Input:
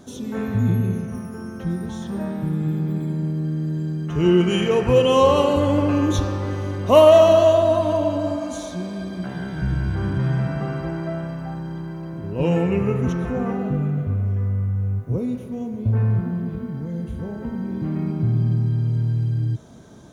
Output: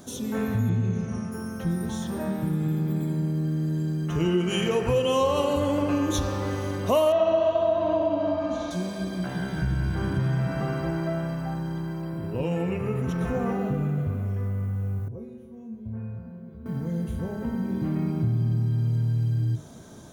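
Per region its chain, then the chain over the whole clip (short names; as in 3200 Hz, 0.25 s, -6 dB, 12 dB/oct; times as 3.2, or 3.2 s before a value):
0.69–1.32 steep low-pass 8100 Hz 48 dB/oct + doubler 28 ms -13.5 dB
7.12–8.71 air absorption 250 m + flutter echo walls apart 11.6 m, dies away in 0.86 s
12.02–13.21 notch 6300 Hz, Q 6.8 + compressor 3:1, threshold -23 dBFS
15.08–16.66 high shelf 2400 Hz -12 dB + resonator 75 Hz, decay 0.5 s, harmonics odd, mix 90%
whole clip: high shelf 8300 Hz +11.5 dB; notches 50/100/150/200/250/300/350/400/450 Hz; compressor 3:1, threshold -22 dBFS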